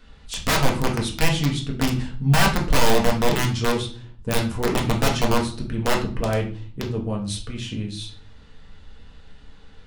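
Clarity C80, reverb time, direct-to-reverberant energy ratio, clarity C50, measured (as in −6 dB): 14.5 dB, 0.40 s, −0.5 dB, 9.0 dB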